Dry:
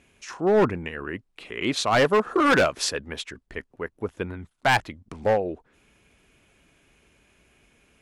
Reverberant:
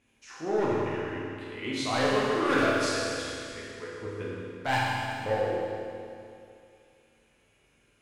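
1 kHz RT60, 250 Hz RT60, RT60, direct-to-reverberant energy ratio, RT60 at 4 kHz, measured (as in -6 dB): 2.5 s, 2.5 s, 2.5 s, -7.0 dB, 2.5 s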